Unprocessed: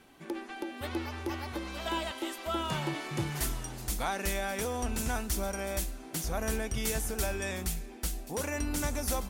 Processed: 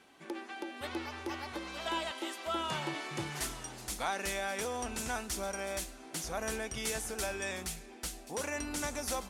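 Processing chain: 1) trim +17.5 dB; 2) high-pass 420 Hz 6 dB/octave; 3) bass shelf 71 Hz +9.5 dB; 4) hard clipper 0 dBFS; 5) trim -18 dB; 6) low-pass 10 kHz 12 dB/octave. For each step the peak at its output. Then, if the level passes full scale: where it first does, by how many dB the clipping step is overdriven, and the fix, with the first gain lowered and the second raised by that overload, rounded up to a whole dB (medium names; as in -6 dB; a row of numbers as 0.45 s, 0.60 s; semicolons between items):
-1.0 dBFS, -2.0 dBFS, -2.0 dBFS, -2.0 dBFS, -20.0 dBFS, -20.5 dBFS; nothing clips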